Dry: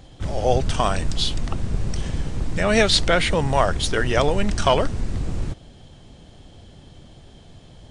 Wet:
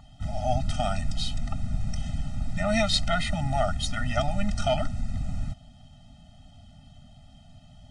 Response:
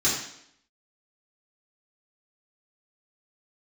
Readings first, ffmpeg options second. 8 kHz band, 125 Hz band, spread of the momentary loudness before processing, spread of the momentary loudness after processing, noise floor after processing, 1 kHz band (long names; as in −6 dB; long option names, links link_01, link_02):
−8.0 dB, −4.5 dB, 11 LU, 9 LU, −52 dBFS, −7.0 dB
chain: -af "aeval=exprs='val(0)+0.0224*sin(2*PI*1000*n/s)':channel_layout=same,afftfilt=real='re*eq(mod(floor(b*sr/1024/300),2),0)':imag='im*eq(mod(floor(b*sr/1024/300),2),0)':win_size=1024:overlap=0.75,volume=-4.5dB"